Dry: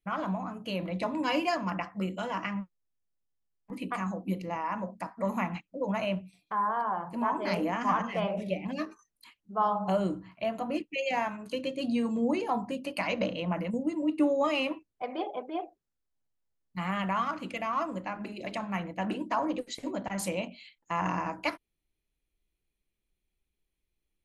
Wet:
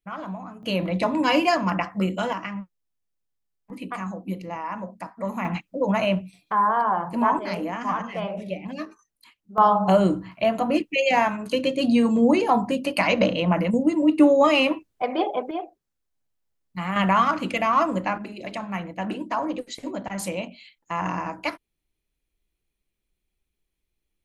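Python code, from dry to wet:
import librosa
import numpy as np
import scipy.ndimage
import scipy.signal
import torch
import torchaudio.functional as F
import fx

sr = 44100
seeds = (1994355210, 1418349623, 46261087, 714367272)

y = fx.gain(x, sr, db=fx.steps((0.0, -1.5), (0.63, 8.5), (2.33, 1.5), (5.45, 8.5), (7.39, 1.0), (9.58, 10.0), (15.51, 4.0), (16.96, 10.5), (18.18, 3.0)))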